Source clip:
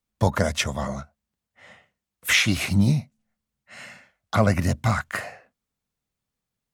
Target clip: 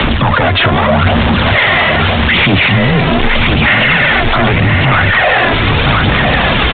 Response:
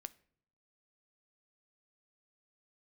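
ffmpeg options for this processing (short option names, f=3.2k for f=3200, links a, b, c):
-af "aeval=exprs='val(0)+0.5*0.0376*sgn(val(0))':c=same,lowshelf=f=490:g=-6,areverse,acompressor=threshold=-30dB:ratio=6,areverse,aeval=exprs='0.0841*sin(PI/2*2.51*val(0)/0.0841)':c=same,aphaser=in_gain=1:out_gain=1:delay=3.1:decay=0.46:speed=0.81:type=sinusoidal,aecho=1:1:1012:0.473,afreqshift=17,aresample=8000,aresample=44100,alimiter=level_in=22.5dB:limit=-1dB:release=50:level=0:latency=1,volume=-1dB"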